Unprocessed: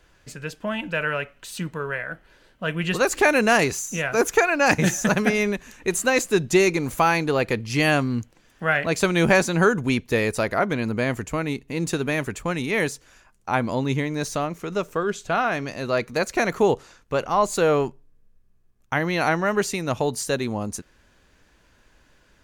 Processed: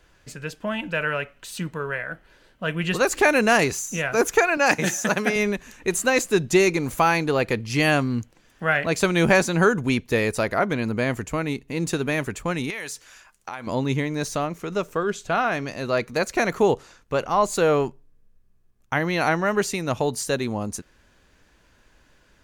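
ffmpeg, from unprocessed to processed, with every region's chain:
-filter_complex "[0:a]asettb=1/sr,asplit=3[a][b][c];[a]atrim=end=4.574[d];[b]atrim=start=4.57:end=5.36,asetpts=PTS-STARTPTS,afade=t=in:d=0.004:c=qsin,afade=t=out:st=0.786:d=0.004:c=qsin,highpass=120,lowshelf=f=160:g=-11.5[e];[c]atrim=start=5.356[f];[d][e]acrossfade=d=0.004:c1=hsin:c2=qsin[g];[g][f]acrossfade=d=0.004:c1=qsin:c2=hsin,asettb=1/sr,asplit=3[h][i][j];[h]atrim=end=12.704[k];[i]atrim=start=12.7:end=13.67,asetpts=PTS-STARTPTS,afade=t=in:d=0.004:c=qsin,afade=t=out:st=0.966:d=0.004:c=qsin,tiltshelf=f=630:g=-7,acompressor=threshold=-29dB:ratio=8:attack=3.2:release=140:knee=1:detection=peak[l];[j]atrim=start=13.666[m];[k][l]acrossfade=d=0.004:c1=hsin:c2=qsin[n];[n][m]acrossfade=d=0.004:c1=qsin:c2=hsin"

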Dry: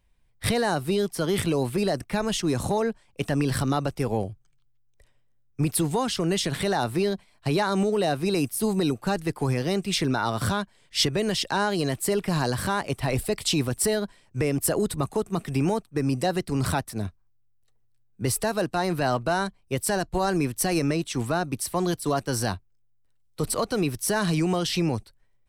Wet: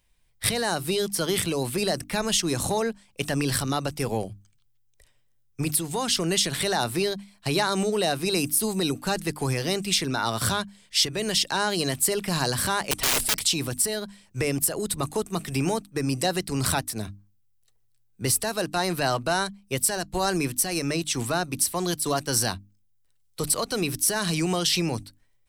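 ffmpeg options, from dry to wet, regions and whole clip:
-filter_complex "[0:a]asettb=1/sr,asplit=3[a][b][c];[a]atrim=end=12.914[d];[b]atrim=start=12.91:end=13.41,asetpts=PTS-STARTPTS,afade=t=in:d=0.004:c=qsin,afade=t=out:st=0.496:d=0.004:c=qsin,lowpass=11k,aecho=1:1:6.2:0.91,atrim=end_sample=22050,aeval=exprs='(mod(11.2*val(0)+1,2)-1)/11.2':c=same[e];[c]atrim=start=13.406[f];[d][e]acrossfade=d=0.004:c1=hsin:c2=qsin[g];[g][f]acrossfade=d=0.004:c1=qsin:c2=hsin,highshelf=f=2.4k:g=10.5,bandreject=f=50:t=h:w=6,bandreject=f=100:t=h:w=6,bandreject=f=150:t=h:w=6,bandreject=f=200:t=h:w=6,bandreject=f=250:t=h:w=6,bandreject=f=300:t=h:w=6,alimiter=limit=-9dB:level=0:latency=1:release=371,volume=-1.5dB"

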